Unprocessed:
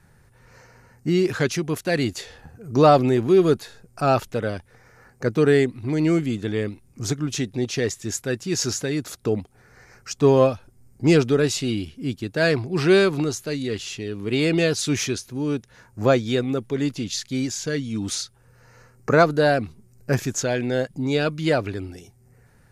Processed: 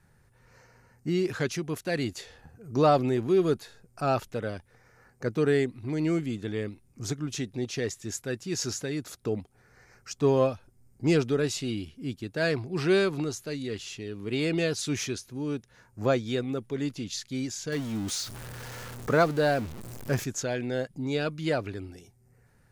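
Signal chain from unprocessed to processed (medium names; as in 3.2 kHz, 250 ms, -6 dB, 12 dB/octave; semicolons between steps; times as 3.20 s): 17.72–20.24 s: jump at every zero crossing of -28.5 dBFS; trim -7 dB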